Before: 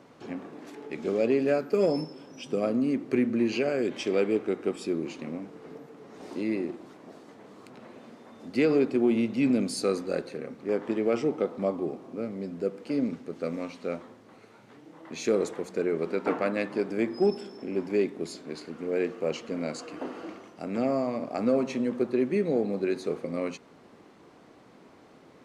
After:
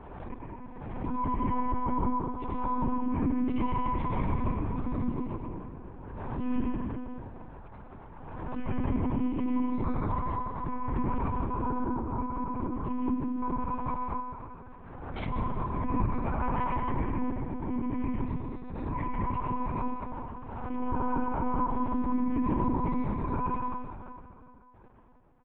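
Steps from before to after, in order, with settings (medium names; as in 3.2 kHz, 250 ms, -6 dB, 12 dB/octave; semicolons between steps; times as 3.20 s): every band turned upside down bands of 500 Hz; Bessel low-pass 670 Hz, order 2; tilt EQ +3 dB/octave; level held to a coarse grid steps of 20 dB; frequency-shifting echo 158 ms, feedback 52%, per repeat +130 Hz, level -19 dB; plate-style reverb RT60 2.3 s, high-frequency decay 0.75×, pre-delay 75 ms, DRR -2.5 dB; monotone LPC vocoder at 8 kHz 250 Hz; swell ahead of each attack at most 34 dB/s; trim +8 dB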